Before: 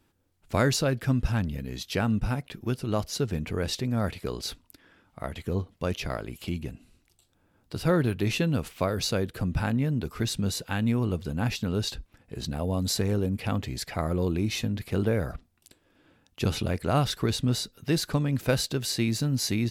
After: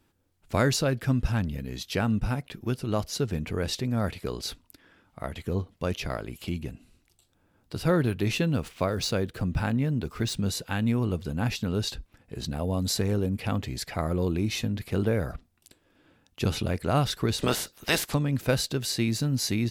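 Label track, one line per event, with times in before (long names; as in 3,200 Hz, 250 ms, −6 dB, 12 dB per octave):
8.370000	10.360000	running median over 3 samples
17.380000	18.130000	ceiling on every frequency bin ceiling under each frame's peak by 25 dB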